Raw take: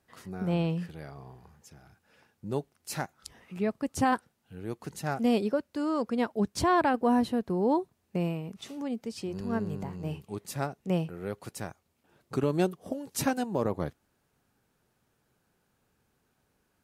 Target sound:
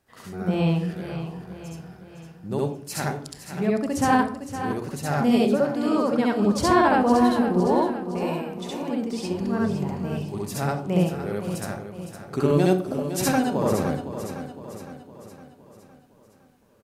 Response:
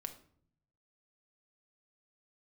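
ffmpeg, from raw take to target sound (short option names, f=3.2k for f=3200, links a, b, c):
-filter_complex "[0:a]asettb=1/sr,asplit=3[a][b][c];[a]atrim=end=7.604[d];[b]atrim=start=7.6:end=8.83,asetpts=PTS-STARTPTS,afade=t=in:d=0.004:c=qsin,afade=t=out:st=1.226:d=0.004:c=qsin,acrossover=split=330[e][f];[e]acompressor=threshold=-40dB:ratio=6[g];[g][f]amix=inputs=2:normalize=0[h];[c]atrim=start=8.826[i];[d][h]acrossfade=d=0.004:c1=hsin:c2=qsin[j];[j][i]acrossfade=d=0.004:c1=qsin:c2=hsin,aecho=1:1:511|1022|1533|2044|2555|3066:0.299|0.152|0.0776|0.0396|0.0202|0.0103,asplit=2[k][l];[1:a]atrim=start_sample=2205,adelay=67[m];[l][m]afir=irnorm=-1:irlink=0,volume=5.5dB[n];[k][n]amix=inputs=2:normalize=0,volume=2dB"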